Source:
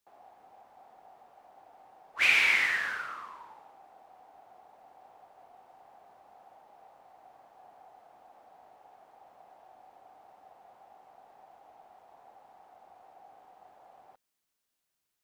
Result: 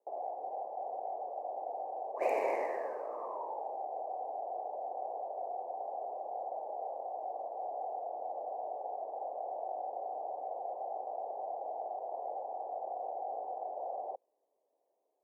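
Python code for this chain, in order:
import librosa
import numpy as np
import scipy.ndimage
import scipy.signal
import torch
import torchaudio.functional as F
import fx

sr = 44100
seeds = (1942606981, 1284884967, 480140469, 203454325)

p1 = fx.cheby_harmonics(x, sr, harmonics=(5, 7), levels_db=(-8, -12), full_scale_db=-9.0)
p2 = scipy.signal.sosfilt(scipy.signal.cheby2(4, 40, 1300.0, 'lowpass', fs=sr, output='sos'), p1)
p3 = fx.over_compress(p2, sr, threshold_db=-60.0, ratio=-0.5)
p4 = p2 + F.gain(torch.from_numpy(p3), -2.0).numpy()
p5 = scipy.signal.sosfilt(scipy.signal.butter(4, 490.0, 'highpass', fs=sr, output='sos'), p4)
y = F.gain(torch.from_numpy(p5), 16.0).numpy()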